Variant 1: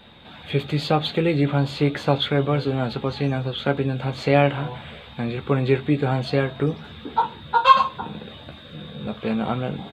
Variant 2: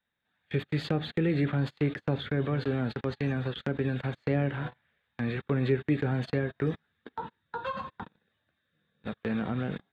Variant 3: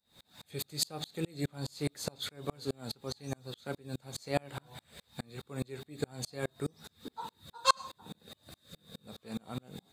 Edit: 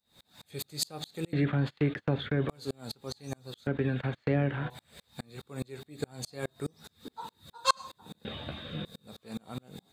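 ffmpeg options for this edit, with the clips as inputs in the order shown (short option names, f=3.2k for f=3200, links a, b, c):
-filter_complex "[1:a]asplit=2[a][b];[2:a]asplit=4[c][d][e][f];[c]atrim=end=1.332[g];[a]atrim=start=1.328:end=2.492[h];[d]atrim=start=2.488:end=3.672[i];[b]atrim=start=3.668:end=4.702[j];[e]atrim=start=4.698:end=8.252[k];[0:a]atrim=start=8.248:end=8.852[l];[f]atrim=start=8.848[m];[g][h]acrossfade=d=0.004:c1=hsin:c2=hsin[n];[n][i]acrossfade=d=0.004:c1=hsin:c2=hsin[o];[o][j]acrossfade=d=0.004:c1=hsin:c2=hsin[p];[p][k]acrossfade=d=0.004:c1=hsin:c2=hsin[q];[q][l]acrossfade=d=0.004:c1=hsin:c2=hsin[r];[r][m]acrossfade=d=0.004:c1=hsin:c2=hsin"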